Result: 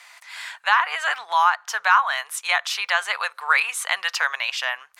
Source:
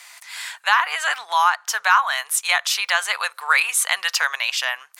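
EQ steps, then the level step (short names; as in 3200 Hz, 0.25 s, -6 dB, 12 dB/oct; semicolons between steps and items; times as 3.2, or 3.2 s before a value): high shelf 5100 Hz -12 dB; 0.0 dB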